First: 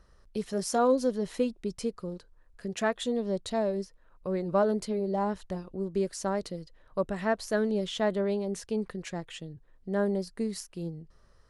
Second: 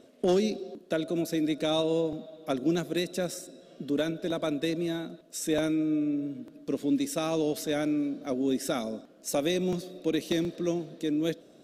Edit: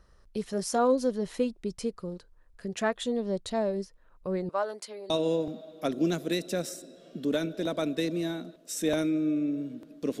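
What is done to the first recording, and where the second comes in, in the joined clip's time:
first
0:04.49–0:05.10: high-pass filter 730 Hz 12 dB per octave
0:05.10: continue with second from 0:01.75

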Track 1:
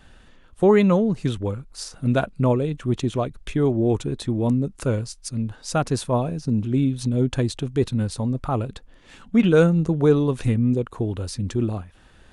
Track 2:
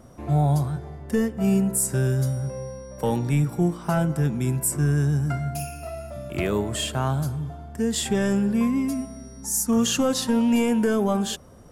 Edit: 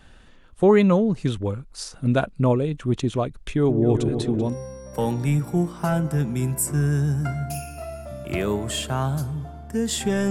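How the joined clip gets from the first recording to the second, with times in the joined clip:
track 1
0:03.56–0:04.57: echo whose low-pass opens from repeat to repeat 129 ms, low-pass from 400 Hz, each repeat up 2 octaves, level −6 dB
0:04.49: continue with track 2 from 0:02.54, crossfade 0.16 s

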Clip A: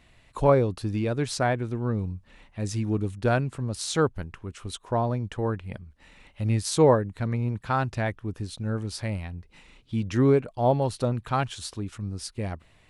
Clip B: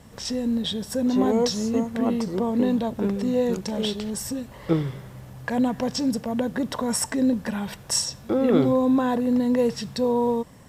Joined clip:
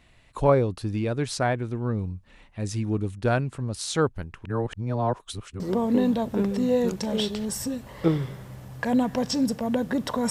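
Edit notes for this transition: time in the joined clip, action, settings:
clip A
0:04.45–0:05.60: reverse
0:05.60: continue with clip B from 0:02.25

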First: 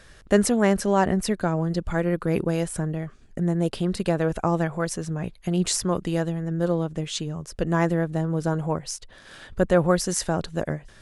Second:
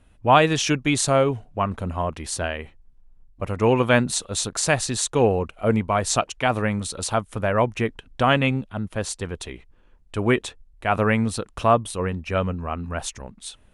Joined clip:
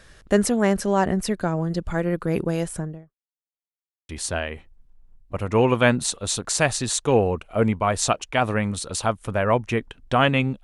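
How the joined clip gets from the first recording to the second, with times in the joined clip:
first
0:02.68–0:03.15: fade out and dull
0:03.15–0:04.09: silence
0:04.09: continue with second from 0:02.17

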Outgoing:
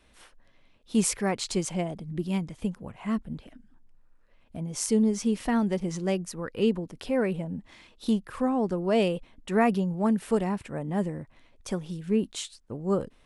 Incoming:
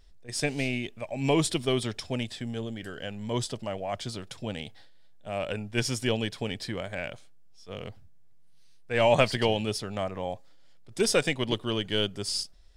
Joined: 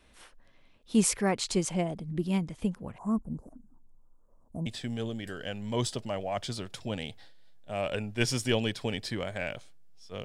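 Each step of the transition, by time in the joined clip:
outgoing
0:02.98–0:04.66: Chebyshev band-stop filter 1,100–6,700 Hz, order 3
0:04.66: continue with incoming from 0:02.23

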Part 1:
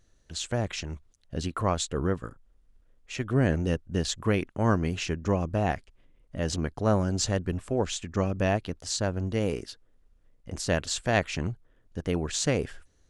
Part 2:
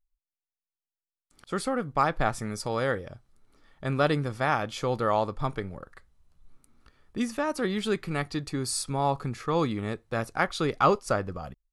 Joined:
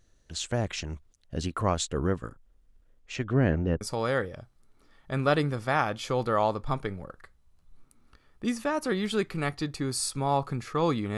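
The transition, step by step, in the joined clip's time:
part 1
0:02.99–0:03.81: low-pass filter 9,900 Hz → 1,400 Hz
0:03.81: continue with part 2 from 0:02.54

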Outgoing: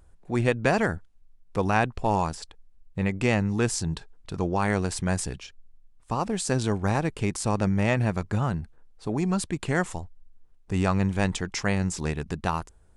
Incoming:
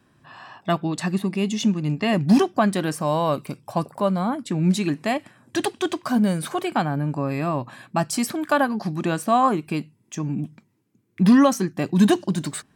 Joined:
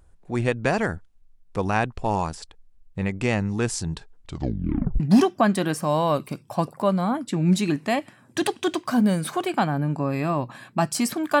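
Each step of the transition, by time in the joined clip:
outgoing
0:04.23: tape stop 0.77 s
0:05.00: continue with incoming from 0:02.18

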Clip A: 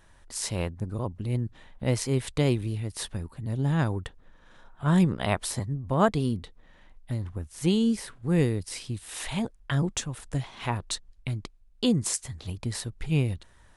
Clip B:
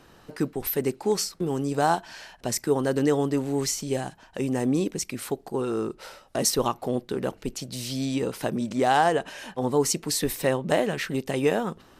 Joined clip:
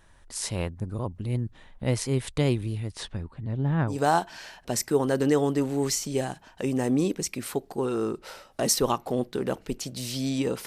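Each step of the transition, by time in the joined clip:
clip A
0:02.90–0:03.99: low-pass filter 7,100 Hz → 1,600 Hz
0:03.92: continue with clip B from 0:01.68, crossfade 0.14 s

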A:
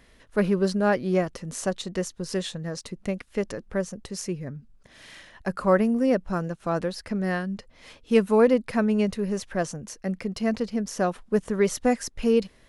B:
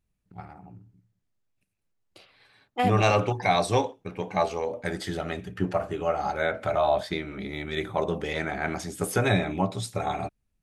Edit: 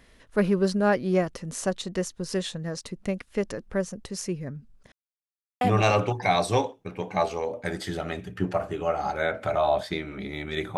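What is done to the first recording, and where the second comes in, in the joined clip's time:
A
0:04.92–0:05.61: silence
0:05.61: continue with B from 0:02.81

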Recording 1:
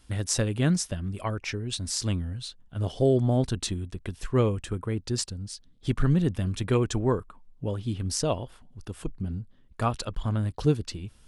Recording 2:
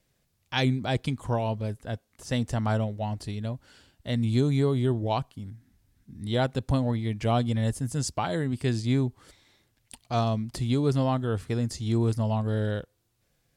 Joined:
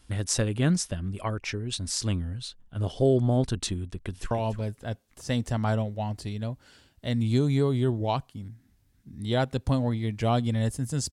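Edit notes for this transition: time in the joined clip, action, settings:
recording 1
0:03.84–0:04.31: delay throw 290 ms, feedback 25%, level −11 dB
0:04.31: continue with recording 2 from 0:01.33

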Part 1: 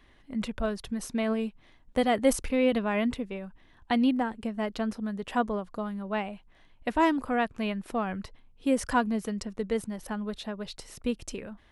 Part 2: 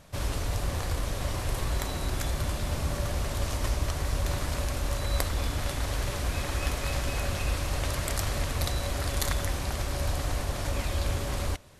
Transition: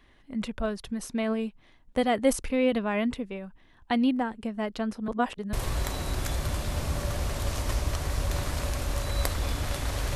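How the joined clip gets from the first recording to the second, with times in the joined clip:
part 1
0:05.08–0:05.53: reverse
0:05.53: continue with part 2 from 0:01.48

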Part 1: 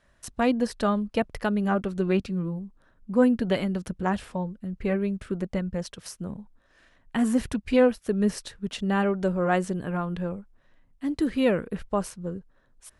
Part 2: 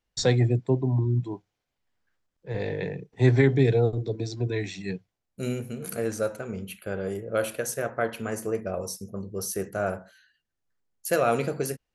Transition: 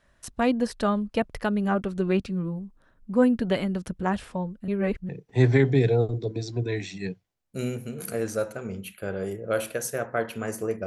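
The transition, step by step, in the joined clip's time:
part 1
0:04.68–0:05.09: reverse
0:05.09: continue with part 2 from 0:02.93

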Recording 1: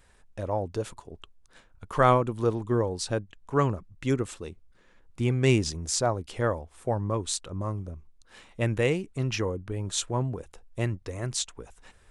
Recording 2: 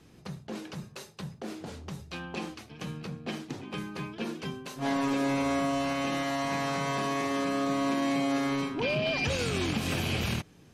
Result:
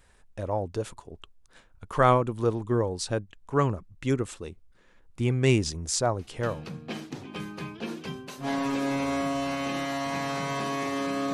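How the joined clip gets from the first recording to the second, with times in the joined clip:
recording 1
0:06.45: continue with recording 2 from 0:02.83, crossfade 0.66 s equal-power

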